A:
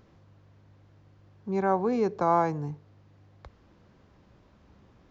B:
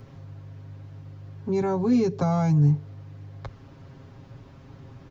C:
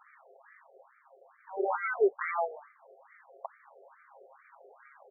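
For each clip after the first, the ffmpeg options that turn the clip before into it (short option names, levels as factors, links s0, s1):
-filter_complex "[0:a]equalizer=f=92:t=o:w=2.1:g=8,aecho=1:1:7.4:0.92,acrossover=split=270|3000[s0][s1][s2];[s1]acompressor=threshold=0.0141:ratio=4[s3];[s0][s3][s2]amix=inputs=3:normalize=0,volume=2"
-filter_complex "[0:a]asplit=2[s0][s1];[s1]asoftclip=type=tanh:threshold=0.0562,volume=0.708[s2];[s0][s2]amix=inputs=2:normalize=0,acrusher=samples=17:mix=1:aa=0.000001:lfo=1:lforange=17:lforate=0.67,afftfilt=real='re*between(b*sr/1024,530*pow(1700/530,0.5+0.5*sin(2*PI*2.3*pts/sr))/1.41,530*pow(1700/530,0.5+0.5*sin(2*PI*2.3*pts/sr))*1.41)':imag='im*between(b*sr/1024,530*pow(1700/530,0.5+0.5*sin(2*PI*2.3*pts/sr))/1.41,530*pow(1700/530,0.5+0.5*sin(2*PI*2.3*pts/sr))*1.41)':win_size=1024:overlap=0.75"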